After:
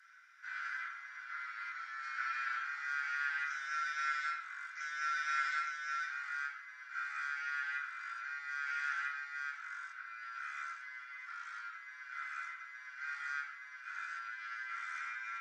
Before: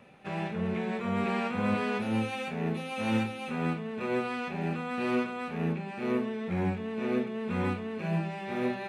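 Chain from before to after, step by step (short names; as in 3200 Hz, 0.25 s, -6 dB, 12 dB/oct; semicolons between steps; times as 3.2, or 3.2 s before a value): steep high-pass 2700 Hz 48 dB/oct; reverb RT60 0.25 s, pre-delay 3 ms, DRR -3.5 dB; speed mistake 78 rpm record played at 45 rpm; gain +6.5 dB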